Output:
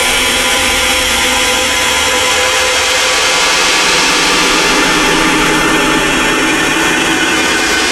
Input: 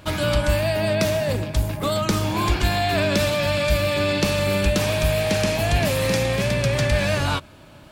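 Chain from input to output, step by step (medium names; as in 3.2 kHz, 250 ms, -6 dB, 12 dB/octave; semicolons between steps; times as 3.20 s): spectral gate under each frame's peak -20 dB weak; compression 2.5:1, threshold -39 dBFS, peak gain reduction 9.5 dB; Paulstretch 45×, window 0.10 s, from 4.56 s; frequency shift +19 Hz; formant shift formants -5 st; hard clipper -29.5 dBFS, distortion -31 dB; loudness maximiser +33 dB; trim -1 dB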